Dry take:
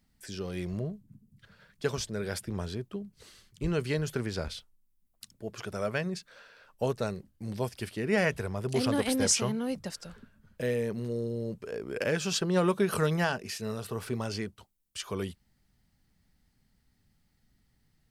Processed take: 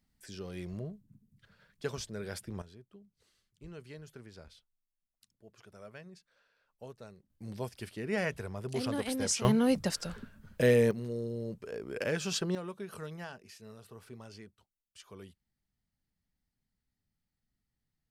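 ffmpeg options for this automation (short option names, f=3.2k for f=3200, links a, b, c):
-af "asetnsamples=n=441:p=0,asendcmd='2.62 volume volume -18dB;7.3 volume volume -6dB;9.45 volume volume 6dB;10.91 volume volume -3.5dB;12.55 volume volume -15.5dB',volume=-6dB"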